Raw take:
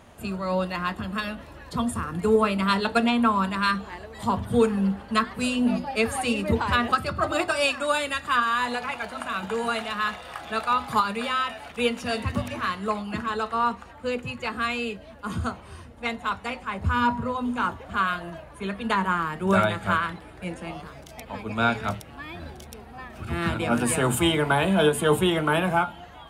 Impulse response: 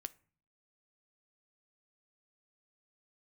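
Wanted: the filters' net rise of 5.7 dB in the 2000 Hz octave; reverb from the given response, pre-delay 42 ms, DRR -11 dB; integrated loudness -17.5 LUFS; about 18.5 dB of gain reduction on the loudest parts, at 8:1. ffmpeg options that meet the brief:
-filter_complex "[0:a]equalizer=f=2k:t=o:g=8,acompressor=threshold=-34dB:ratio=8,asplit=2[a][b];[1:a]atrim=start_sample=2205,adelay=42[c];[b][c]afir=irnorm=-1:irlink=0,volume=14.5dB[d];[a][d]amix=inputs=2:normalize=0,volume=8.5dB"

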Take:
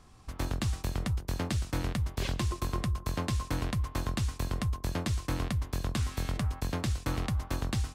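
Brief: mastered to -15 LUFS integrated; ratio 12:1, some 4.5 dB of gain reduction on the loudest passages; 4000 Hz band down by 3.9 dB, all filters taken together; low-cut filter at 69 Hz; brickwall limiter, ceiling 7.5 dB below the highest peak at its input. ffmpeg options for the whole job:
-af "highpass=69,equalizer=f=4k:t=o:g=-5,acompressor=threshold=-32dB:ratio=12,volume=25.5dB,alimiter=limit=-4.5dB:level=0:latency=1"

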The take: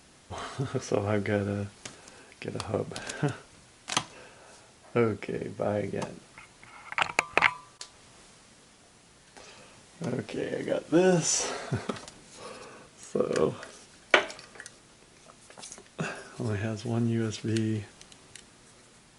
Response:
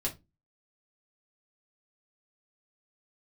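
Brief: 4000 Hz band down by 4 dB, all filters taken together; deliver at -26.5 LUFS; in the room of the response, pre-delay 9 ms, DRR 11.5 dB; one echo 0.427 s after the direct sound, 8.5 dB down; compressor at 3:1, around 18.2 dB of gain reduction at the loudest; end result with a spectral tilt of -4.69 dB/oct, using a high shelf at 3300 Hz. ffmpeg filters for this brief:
-filter_complex "[0:a]highshelf=f=3.3k:g=-3,equalizer=f=4k:t=o:g=-3.5,acompressor=threshold=-47dB:ratio=3,aecho=1:1:427:0.376,asplit=2[a][b];[1:a]atrim=start_sample=2205,adelay=9[c];[b][c]afir=irnorm=-1:irlink=0,volume=-15dB[d];[a][d]amix=inputs=2:normalize=0,volume=21dB"

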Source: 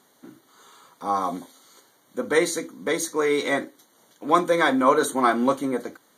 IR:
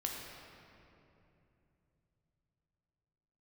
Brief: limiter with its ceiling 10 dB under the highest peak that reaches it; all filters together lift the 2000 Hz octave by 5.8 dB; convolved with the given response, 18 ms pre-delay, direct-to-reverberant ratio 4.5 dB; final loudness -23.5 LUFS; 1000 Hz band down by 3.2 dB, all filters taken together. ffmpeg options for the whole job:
-filter_complex "[0:a]equalizer=f=1k:t=o:g=-6.5,equalizer=f=2k:t=o:g=9,alimiter=limit=-15.5dB:level=0:latency=1,asplit=2[a][b];[1:a]atrim=start_sample=2205,adelay=18[c];[b][c]afir=irnorm=-1:irlink=0,volume=-6dB[d];[a][d]amix=inputs=2:normalize=0,volume=1.5dB"

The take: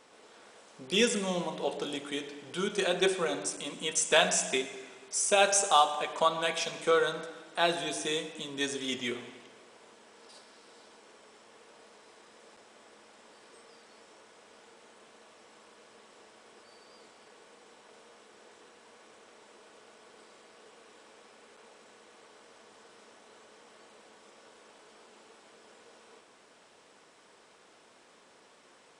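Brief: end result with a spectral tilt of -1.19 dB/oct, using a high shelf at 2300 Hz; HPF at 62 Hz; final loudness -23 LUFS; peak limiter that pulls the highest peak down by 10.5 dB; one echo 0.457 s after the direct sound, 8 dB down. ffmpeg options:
-af "highpass=62,highshelf=f=2.3k:g=6,alimiter=limit=-17dB:level=0:latency=1,aecho=1:1:457:0.398,volume=6dB"

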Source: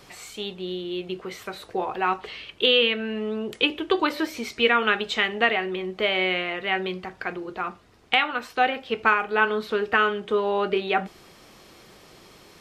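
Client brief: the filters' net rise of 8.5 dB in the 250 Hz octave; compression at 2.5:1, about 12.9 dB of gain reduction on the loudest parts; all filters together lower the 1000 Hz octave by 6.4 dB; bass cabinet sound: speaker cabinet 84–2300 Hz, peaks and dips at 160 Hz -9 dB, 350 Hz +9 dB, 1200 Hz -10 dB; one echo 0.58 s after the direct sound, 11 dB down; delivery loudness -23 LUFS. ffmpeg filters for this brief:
-af "equalizer=f=250:t=o:g=8,equalizer=f=1k:t=o:g=-6.5,acompressor=threshold=-35dB:ratio=2.5,highpass=f=84:w=0.5412,highpass=f=84:w=1.3066,equalizer=f=160:t=q:w=4:g=-9,equalizer=f=350:t=q:w=4:g=9,equalizer=f=1.2k:t=q:w=4:g=-10,lowpass=f=2.3k:w=0.5412,lowpass=f=2.3k:w=1.3066,aecho=1:1:580:0.282,volume=9.5dB"

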